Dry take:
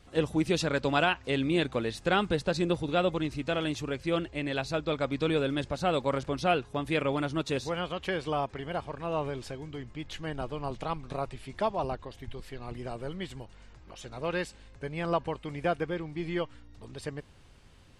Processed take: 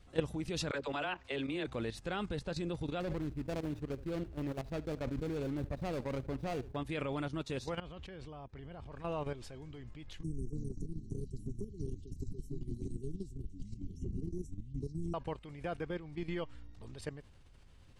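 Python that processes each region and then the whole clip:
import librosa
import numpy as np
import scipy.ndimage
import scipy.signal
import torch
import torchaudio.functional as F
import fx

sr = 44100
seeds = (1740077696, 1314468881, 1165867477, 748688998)

y = fx.chain(x, sr, fx.bass_treble(bass_db=-10, treble_db=-5),
    fx.dispersion(late='lows', ms=43.0, hz=480.0), at=(0.71, 1.67))
y = fx.chain(y, sr, fx.median_filter(points=41),
    fx.echo_single(ms=71, db=-20.0),
    fx.sustainer(db_per_s=130.0), at=(3.0, 6.76))
y = fx.chain(y, sr, fx.lowpass(hz=7900.0, slope=12),
    fx.low_shelf(hz=330.0, db=8.0),
    fx.level_steps(step_db=22), at=(7.8, 8.92))
y = fx.chain(y, sr, fx.brickwall_bandstop(low_hz=440.0, high_hz=5400.0),
    fx.echo_pitch(ms=320, semitones=-6, count=3, db_per_echo=-6.0),
    fx.band_squash(depth_pct=100), at=(10.23, 15.14))
y = fx.low_shelf(y, sr, hz=92.0, db=9.0)
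y = fx.level_steps(y, sr, step_db=11)
y = y * librosa.db_to_amplitude(-3.5)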